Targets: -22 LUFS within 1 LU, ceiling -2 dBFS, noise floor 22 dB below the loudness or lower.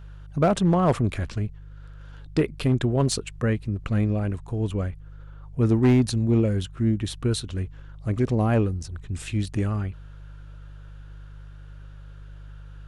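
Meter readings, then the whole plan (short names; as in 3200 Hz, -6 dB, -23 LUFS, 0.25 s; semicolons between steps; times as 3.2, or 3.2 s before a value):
clipped 0.5%; flat tops at -13.0 dBFS; hum 50 Hz; harmonics up to 150 Hz; hum level -40 dBFS; loudness -25.0 LUFS; peak -13.0 dBFS; loudness target -22.0 LUFS
-> clip repair -13 dBFS; de-hum 50 Hz, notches 3; gain +3 dB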